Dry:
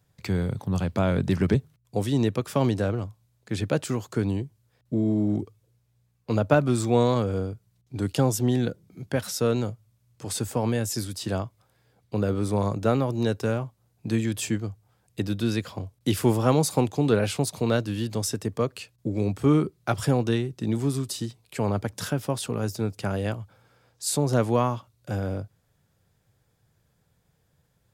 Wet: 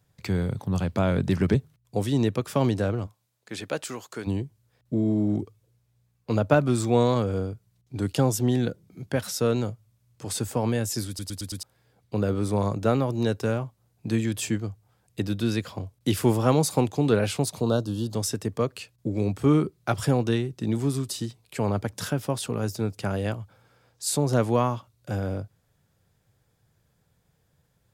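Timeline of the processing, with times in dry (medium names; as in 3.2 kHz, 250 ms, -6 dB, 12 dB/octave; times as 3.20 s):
3.06–4.26 s: high-pass 420 Hz -> 890 Hz 6 dB/octave
11.08 s: stutter in place 0.11 s, 5 plays
17.61–18.14 s: Butterworth band-stop 2.1 kHz, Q 1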